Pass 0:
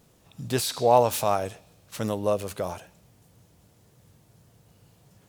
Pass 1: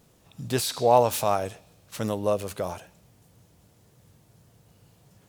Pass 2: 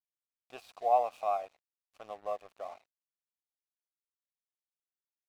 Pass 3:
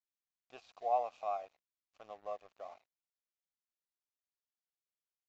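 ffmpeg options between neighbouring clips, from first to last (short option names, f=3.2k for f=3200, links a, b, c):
-af anull
-filter_complex "[0:a]asplit=3[a][b][c];[a]bandpass=f=730:t=q:w=8,volume=0dB[d];[b]bandpass=f=1.09k:t=q:w=8,volume=-6dB[e];[c]bandpass=f=2.44k:t=q:w=8,volume=-9dB[f];[d][e][f]amix=inputs=3:normalize=0,lowshelf=f=330:g=-8,aeval=exprs='sgn(val(0))*max(abs(val(0))-0.002,0)':c=same"
-af "aresample=16000,aresample=44100,volume=-6dB"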